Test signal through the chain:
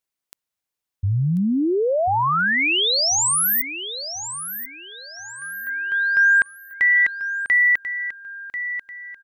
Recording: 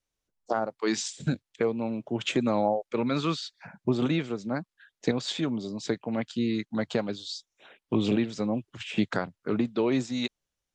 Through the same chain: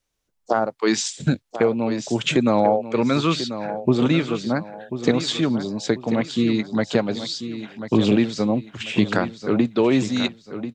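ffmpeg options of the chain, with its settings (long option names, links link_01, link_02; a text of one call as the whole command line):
ffmpeg -i in.wav -af "aecho=1:1:1040|2080|3120|4160:0.282|0.093|0.0307|0.0101,volume=7.5dB" out.wav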